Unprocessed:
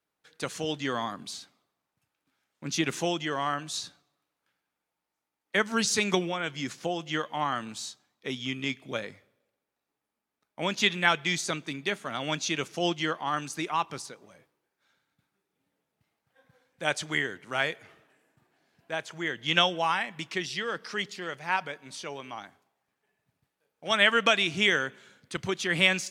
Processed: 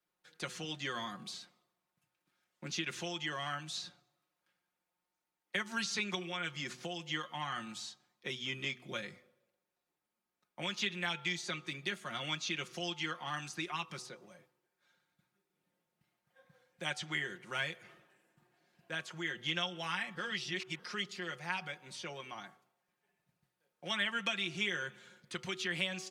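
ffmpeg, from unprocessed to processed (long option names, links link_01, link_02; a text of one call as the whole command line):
ffmpeg -i in.wav -filter_complex "[0:a]asplit=3[link_01][link_02][link_03];[link_01]atrim=end=20.152[link_04];[link_02]atrim=start=20.148:end=20.792,asetpts=PTS-STARTPTS,areverse[link_05];[link_03]atrim=start=20.788[link_06];[link_04][link_05]acrossfade=duration=0.004:curve1=hsin:curve2=hsin[link_07];[link_07][link_06]acrossfade=duration=0.004:curve1=hsin:curve2=hsin,aecho=1:1:5.6:0.67,bandreject=frequency=124.9:width_type=h:width=4,bandreject=frequency=249.8:width_type=h:width=4,bandreject=frequency=374.7:width_type=h:width=4,bandreject=frequency=499.6:width_type=h:width=4,bandreject=frequency=624.5:width_type=h:width=4,bandreject=frequency=749.4:width_type=h:width=4,bandreject=frequency=874.3:width_type=h:width=4,bandreject=frequency=999.2:width_type=h:width=4,bandreject=frequency=1124.1:width_type=h:width=4,bandreject=frequency=1249:width_type=h:width=4,bandreject=frequency=1373.9:width_type=h:width=4,acrossover=split=260|1400|5000[link_08][link_09][link_10][link_11];[link_08]acompressor=threshold=-43dB:ratio=4[link_12];[link_09]acompressor=threshold=-41dB:ratio=4[link_13];[link_10]acompressor=threshold=-30dB:ratio=4[link_14];[link_11]acompressor=threshold=-49dB:ratio=4[link_15];[link_12][link_13][link_14][link_15]amix=inputs=4:normalize=0,volume=-4.5dB" out.wav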